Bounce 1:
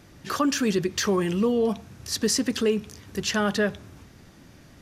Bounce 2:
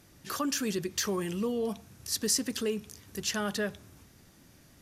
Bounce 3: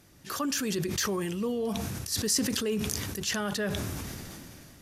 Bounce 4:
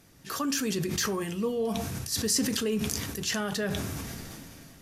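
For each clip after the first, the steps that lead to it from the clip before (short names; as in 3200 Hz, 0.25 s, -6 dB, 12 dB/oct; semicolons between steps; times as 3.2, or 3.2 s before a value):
bell 13000 Hz +11.5 dB 1.6 oct; gain -8.5 dB
sustainer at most 21 dB/s
reverb RT60 0.30 s, pre-delay 4 ms, DRR 8.5 dB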